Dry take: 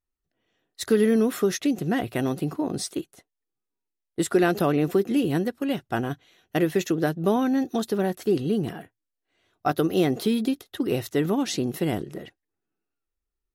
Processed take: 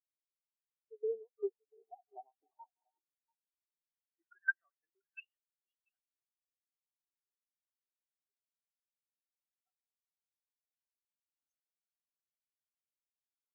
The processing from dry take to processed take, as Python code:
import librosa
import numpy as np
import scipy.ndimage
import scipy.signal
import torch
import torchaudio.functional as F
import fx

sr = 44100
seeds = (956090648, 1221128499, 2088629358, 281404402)

p1 = scipy.signal.medfilt(x, 9)
p2 = fx.peak_eq(p1, sr, hz=120.0, db=-12.5, octaves=2.1)
p3 = fx.hum_notches(p2, sr, base_hz=60, count=6)
p4 = fx.rev_gated(p3, sr, seeds[0], gate_ms=420, shape='rising', drr_db=10.0)
p5 = fx.tremolo_shape(p4, sr, shape='saw_down', hz=2.9, depth_pct=95)
p6 = 10.0 ** (-22.0 / 20.0) * np.tanh(p5 / 10.0 ** (-22.0 / 20.0))
p7 = p5 + (p6 * 10.0 ** (-5.5 / 20.0))
p8 = fx.filter_sweep_bandpass(p7, sr, from_hz=860.0, to_hz=6000.0, start_s=3.15, end_s=6.73, q=4.1)
p9 = p8 + fx.echo_single(p8, sr, ms=688, db=-9.0, dry=0)
p10 = fx.spectral_expand(p9, sr, expansion=4.0)
y = p10 * 10.0 ** (1.5 / 20.0)